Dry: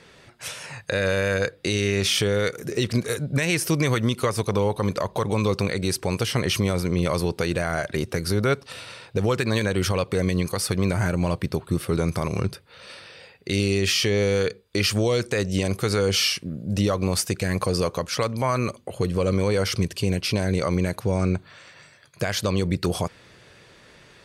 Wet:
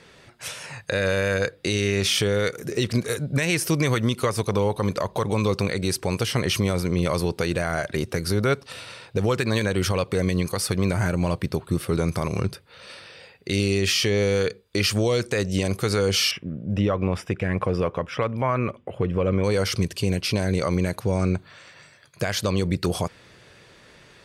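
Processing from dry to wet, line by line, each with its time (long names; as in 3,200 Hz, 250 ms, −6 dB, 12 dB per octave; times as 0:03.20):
0:16.31–0:19.44: Savitzky-Golay smoothing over 25 samples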